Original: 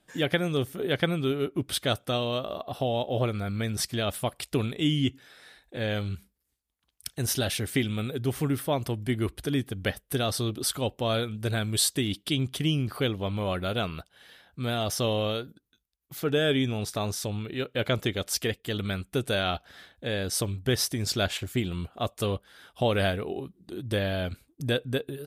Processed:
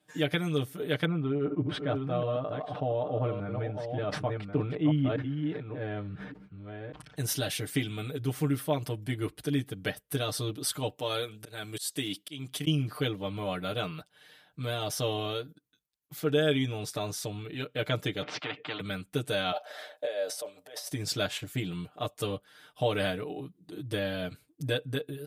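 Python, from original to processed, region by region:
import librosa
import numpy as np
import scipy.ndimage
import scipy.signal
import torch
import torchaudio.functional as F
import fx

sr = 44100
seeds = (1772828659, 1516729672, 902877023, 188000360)

y = fx.chain(x, sr, fx.reverse_delay(ms=587, wet_db=-6.5),
    fx.lowpass(hz=1400.0, slope=12),
    fx.sustainer(db_per_s=51.0), at=(1.05, 7.16))
y = fx.chain(y, sr, fx.highpass(hz=240.0, slope=6),
    fx.high_shelf(hz=5400.0, db=5.0),
    fx.auto_swell(attack_ms=237.0), at=(10.96, 12.67))
y = fx.chain(y, sr, fx.cabinet(low_hz=150.0, low_slope=24, high_hz=2200.0, hz=(190.0, 280.0, 1000.0, 1700.0), db=(-8, 5, -9, -9)),
    fx.spectral_comp(ratio=4.0), at=(18.22, 18.8))
y = fx.chain(y, sr, fx.over_compress(threshold_db=-36.0, ratio=-1.0),
    fx.highpass_res(hz=590.0, q=6.1), at=(19.52, 20.9))
y = scipy.signal.sosfilt(scipy.signal.butter(2, 83.0, 'highpass', fs=sr, output='sos'), y)
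y = y + 0.99 * np.pad(y, (int(6.6 * sr / 1000.0), 0))[:len(y)]
y = y * 10.0 ** (-6.0 / 20.0)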